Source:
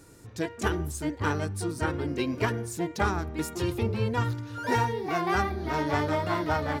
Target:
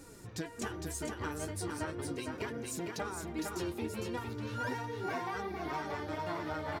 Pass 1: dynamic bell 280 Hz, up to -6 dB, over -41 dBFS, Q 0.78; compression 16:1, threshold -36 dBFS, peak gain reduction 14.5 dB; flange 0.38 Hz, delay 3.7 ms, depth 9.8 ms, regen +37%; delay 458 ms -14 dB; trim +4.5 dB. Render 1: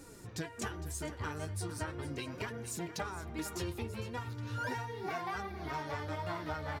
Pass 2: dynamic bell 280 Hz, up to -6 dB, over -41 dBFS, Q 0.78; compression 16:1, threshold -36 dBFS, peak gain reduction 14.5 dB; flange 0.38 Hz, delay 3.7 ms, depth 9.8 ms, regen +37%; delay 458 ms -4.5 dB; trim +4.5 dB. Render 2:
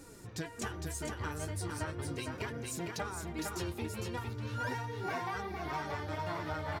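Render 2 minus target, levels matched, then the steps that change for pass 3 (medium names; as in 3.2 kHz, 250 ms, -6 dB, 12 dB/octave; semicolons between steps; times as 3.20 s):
125 Hz band +3.5 dB
change: dynamic bell 110 Hz, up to -6 dB, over -41 dBFS, Q 0.78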